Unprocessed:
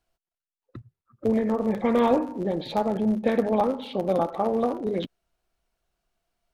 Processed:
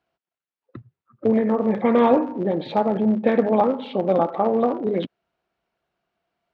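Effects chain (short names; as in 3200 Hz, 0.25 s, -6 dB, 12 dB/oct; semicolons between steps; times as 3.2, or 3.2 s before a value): BPF 130–3000 Hz; gain +4.5 dB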